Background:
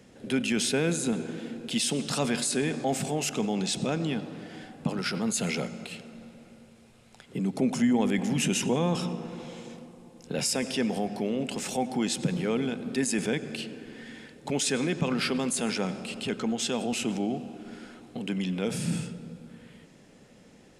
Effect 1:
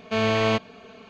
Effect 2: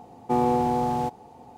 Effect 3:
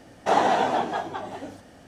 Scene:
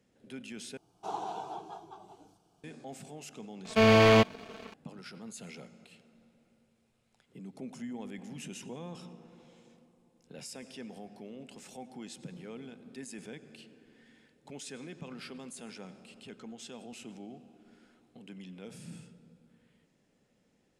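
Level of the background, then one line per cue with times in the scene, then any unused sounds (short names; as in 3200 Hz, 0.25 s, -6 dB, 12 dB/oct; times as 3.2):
background -17 dB
0.77 replace with 3 -15 dB + fixed phaser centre 370 Hz, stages 8
3.65 add 1 -4 dB + sample leveller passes 2
not used: 2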